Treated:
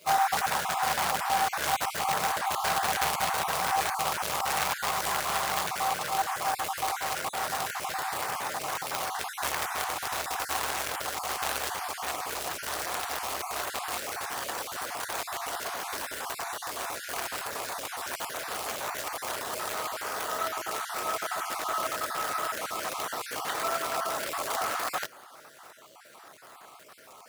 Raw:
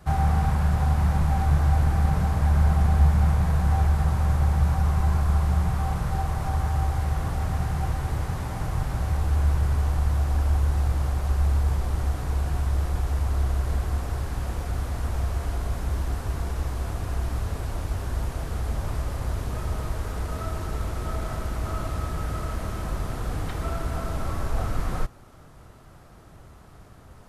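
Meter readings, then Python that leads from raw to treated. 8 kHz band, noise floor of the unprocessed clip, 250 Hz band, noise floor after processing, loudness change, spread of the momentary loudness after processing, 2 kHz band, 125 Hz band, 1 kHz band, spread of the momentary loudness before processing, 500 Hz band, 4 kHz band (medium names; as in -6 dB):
+10.5 dB, -48 dBFS, -13.0 dB, -51 dBFS, -4.5 dB, 7 LU, +7.5 dB, -27.5 dB, +5.0 dB, 9 LU, +1.0 dB, +10.5 dB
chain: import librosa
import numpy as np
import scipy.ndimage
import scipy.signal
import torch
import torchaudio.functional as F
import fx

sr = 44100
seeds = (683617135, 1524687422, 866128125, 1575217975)

y = fx.spec_dropout(x, sr, seeds[0], share_pct=27)
y = fx.quant_float(y, sr, bits=2)
y = scipy.signal.sosfilt(scipy.signal.butter(2, 680.0, 'highpass', fs=sr, output='sos'), y)
y = F.gain(torch.from_numpy(y), 7.5).numpy()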